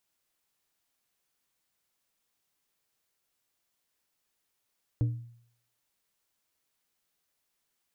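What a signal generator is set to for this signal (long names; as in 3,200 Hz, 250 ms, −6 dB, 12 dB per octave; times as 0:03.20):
struck glass plate, lowest mode 118 Hz, decay 0.62 s, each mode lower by 10.5 dB, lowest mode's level −21 dB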